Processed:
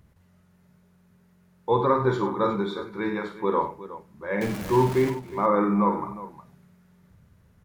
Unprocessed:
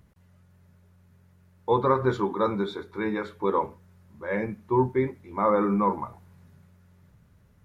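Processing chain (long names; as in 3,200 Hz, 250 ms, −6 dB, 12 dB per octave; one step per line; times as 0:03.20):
0:04.41–0:05.10: converter with a step at zero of −28.5 dBFS
multi-tap delay 49/94/362 ms −7/−12/−14.5 dB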